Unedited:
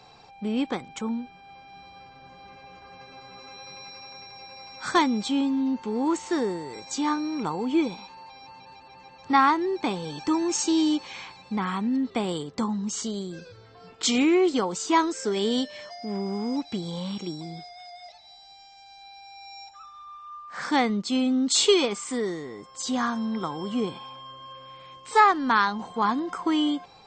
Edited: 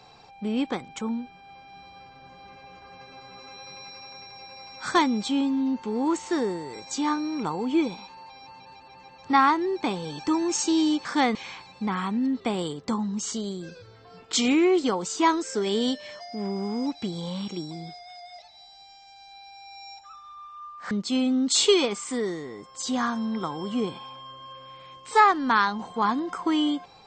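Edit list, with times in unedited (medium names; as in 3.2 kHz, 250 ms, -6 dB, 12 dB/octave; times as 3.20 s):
20.61–20.91 s: move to 11.05 s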